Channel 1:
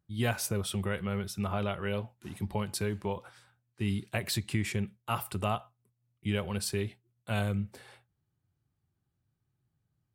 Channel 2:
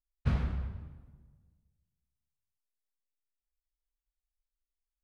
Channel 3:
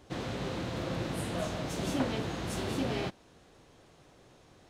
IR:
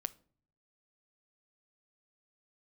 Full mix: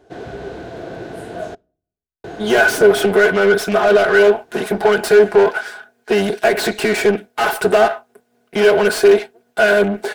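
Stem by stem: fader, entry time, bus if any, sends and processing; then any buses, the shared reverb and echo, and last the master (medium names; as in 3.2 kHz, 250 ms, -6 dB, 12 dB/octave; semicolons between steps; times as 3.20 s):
+0.5 dB, 2.30 s, no send, comb filter that takes the minimum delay 4.8 ms; overdrive pedal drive 30 dB, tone 6.2 kHz, clips at -15 dBFS
-11.5 dB, 0.00 s, no send, none
-5.5 dB, 0.00 s, muted 1.55–2.24 s, send -8.5 dB, none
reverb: on, RT60 0.50 s, pre-delay 7 ms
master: small resonant body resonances 420/670/1500 Hz, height 16 dB, ringing for 30 ms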